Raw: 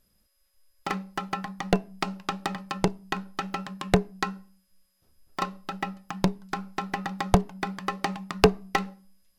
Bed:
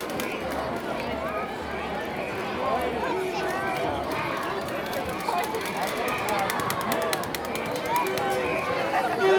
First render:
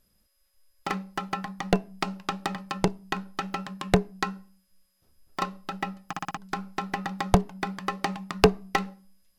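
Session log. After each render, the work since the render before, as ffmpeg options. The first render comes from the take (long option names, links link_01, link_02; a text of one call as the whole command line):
ffmpeg -i in.wav -filter_complex "[0:a]asplit=6[link_01][link_02][link_03][link_04][link_05][link_06];[link_01]atrim=end=6.132[link_07];[link_02]atrim=start=6.068:end=6.132[link_08];[link_03]atrim=start=6.068:end=6.132[link_09];[link_04]atrim=start=6.068:end=6.132[link_10];[link_05]atrim=start=6.068:end=6.132[link_11];[link_06]atrim=start=6.368[link_12];[link_07][link_08]acrossfade=duration=0.004:curve1=hsin:curve2=hsin[link_13];[link_13][link_09]acrossfade=duration=0.004:curve1=hsin:curve2=hsin[link_14];[link_14][link_10]acrossfade=duration=0.004:curve1=hsin:curve2=hsin[link_15];[link_15][link_11]acrossfade=duration=0.004:curve1=hsin:curve2=hsin[link_16];[link_16][link_12]acrossfade=duration=0.004:curve1=hsin:curve2=hsin" out.wav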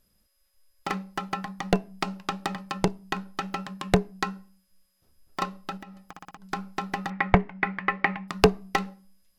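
ffmpeg -i in.wav -filter_complex "[0:a]asettb=1/sr,asplit=3[link_01][link_02][link_03];[link_01]atrim=end=5.774[link_04];[link_02]atrim=start=5.77:end=6.5,asetpts=PTS-STARTPTS,afade=type=in:duration=0.004:curve=qsin,afade=type=out:start_time=0.726:duration=0.004:curve=qsin,acompressor=threshold=-41dB:ratio=5:attack=3.2:release=140:knee=1:detection=peak[link_05];[link_03]atrim=start=6.496[link_06];[link_04][link_05]acrossfade=duration=0.004:curve1=hsin:curve2=qsin[link_07];[link_07][link_06]acrossfade=duration=0.004:curve1=qsin:curve2=hsin,asettb=1/sr,asplit=3[link_08][link_09][link_10];[link_08]atrim=end=7.104[link_11];[link_09]atrim=start=7.1:end=8.28,asetpts=PTS-STARTPTS,afade=type=in:duration=0.004:curve=qsin,afade=type=out:start_time=1.176:duration=0.004:curve=qsin,lowpass=frequency=2100:width_type=q:width=4.4[link_12];[link_10]atrim=start=8.276[link_13];[link_11][link_12]acrossfade=duration=0.004:curve1=hsin:curve2=qsin[link_14];[link_14][link_13]acrossfade=duration=0.004:curve1=qsin:curve2=hsin" out.wav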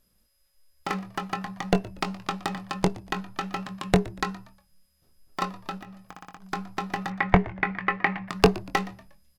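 ffmpeg -i in.wav -filter_complex "[0:a]asplit=2[link_01][link_02];[link_02]adelay=22,volume=-10dB[link_03];[link_01][link_03]amix=inputs=2:normalize=0,asplit=4[link_04][link_05][link_06][link_07];[link_05]adelay=119,afreqshift=-75,volume=-19.5dB[link_08];[link_06]adelay=238,afreqshift=-150,volume=-28.1dB[link_09];[link_07]adelay=357,afreqshift=-225,volume=-36.8dB[link_10];[link_04][link_08][link_09][link_10]amix=inputs=4:normalize=0" out.wav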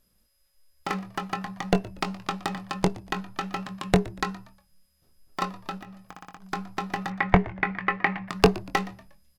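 ffmpeg -i in.wav -af anull out.wav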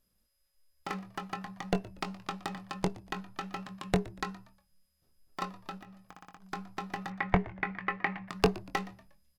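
ffmpeg -i in.wav -af "volume=-7.5dB" out.wav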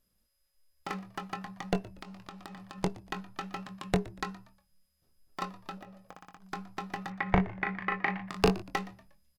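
ffmpeg -i in.wav -filter_complex "[0:a]asettb=1/sr,asplit=3[link_01][link_02][link_03];[link_01]atrim=end=1.884[link_04];[link_02]atrim=start=1.88:end=2.78,asetpts=PTS-STARTPTS,afade=type=in:duration=0.004:curve=qsin,afade=type=out:start_time=0.896:duration=0.004:curve=qsin,acompressor=threshold=-42dB:ratio=5:attack=3.2:release=140:knee=1:detection=peak[link_05];[link_03]atrim=start=2.776[link_06];[link_04][link_05]acrossfade=duration=0.004:curve1=hsin:curve2=qsin[link_07];[link_07][link_06]acrossfade=duration=0.004:curve1=qsin:curve2=hsin,asettb=1/sr,asplit=3[link_08][link_09][link_10];[link_08]atrim=end=5.774[link_11];[link_09]atrim=start=5.77:end=6.17,asetpts=PTS-STARTPTS,afade=type=in:duration=0.004:curve=qsin,afade=type=out:start_time=0.396:duration=0.004:curve=qsin,equalizer=frequency=540:width=2.2:gain=12[link_12];[link_10]atrim=start=6.166[link_13];[link_11][link_12]acrossfade=duration=0.004:curve1=hsin:curve2=qsin[link_14];[link_14][link_13]acrossfade=duration=0.004:curve1=qsin:curve2=hsin,asplit=3[link_15][link_16][link_17];[link_15]afade=type=out:start_time=7.26:duration=0.02[link_18];[link_16]asplit=2[link_19][link_20];[link_20]adelay=37,volume=-4dB[link_21];[link_19][link_21]amix=inputs=2:normalize=0,afade=type=in:start_time=7.26:duration=0.02,afade=type=out:start_time=8.61:duration=0.02[link_22];[link_17]afade=type=in:start_time=8.61:duration=0.02[link_23];[link_18][link_22][link_23]amix=inputs=3:normalize=0" out.wav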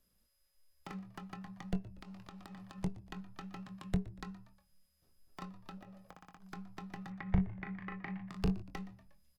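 ffmpeg -i in.wav -filter_complex "[0:a]acrossover=split=200[link_01][link_02];[link_02]acompressor=threshold=-57dB:ratio=2[link_03];[link_01][link_03]amix=inputs=2:normalize=0" out.wav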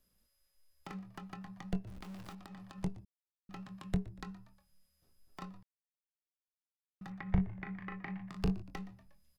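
ffmpeg -i in.wav -filter_complex "[0:a]asettb=1/sr,asplit=3[link_01][link_02][link_03];[link_01]atrim=end=1.874[link_04];[link_02]atrim=start=1.87:end=2.35,asetpts=PTS-STARTPTS,afade=type=in:duration=0.004:curve=qsin,afade=type=out:start_time=0.476:duration=0.004:curve=qsin,aeval=exprs='val(0)+0.5*0.00376*sgn(val(0))':channel_layout=same[link_05];[link_03]atrim=start=2.346[link_06];[link_04][link_05]acrossfade=duration=0.004:curve1=hsin:curve2=qsin[link_07];[link_07][link_06]acrossfade=duration=0.004:curve1=qsin:curve2=hsin,asplit=5[link_08][link_09][link_10][link_11][link_12];[link_08]atrim=end=3.05,asetpts=PTS-STARTPTS,afade=type=out:start_time=3.046:duration=0.004:curve=hsin[link_13];[link_09]atrim=start=3.05:end=3.49,asetpts=PTS-STARTPTS,volume=0[link_14];[link_10]atrim=start=3.49:end=5.63,asetpts=PTS-STARTPTS,afade=type=in:duration=0.004:curve=hsin,afade=type=out:start_time=2.136:duration=0.004:curve=hsin[link_15];[link_11]atrim=start=5.63:end=7.01,asetpts=PTS-STARTPTS,volume=0[link_16];[link_12]atrim=start=7.01,asetpts=PTS-STARTPTS,afade=type=in:duration=0.004:curve=hsin[link_17];[link_13][link_14][link_15][link_16][link_17]concat=n=5:v=0:a=1" out.wav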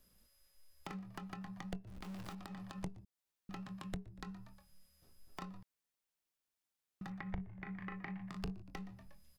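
ffmpeg -i in.wav -filter_complex "[0:a]asplit=2[link_01][link_02];[link_02]alimiter=limit=-24dB:level=0:latency=1:release=458,volume=-0.5dB[link_03];[link_01][link_03]amix=inputs=2:normalize=0,acompressor=threshold=-46dB:ratio=2.5" out.wav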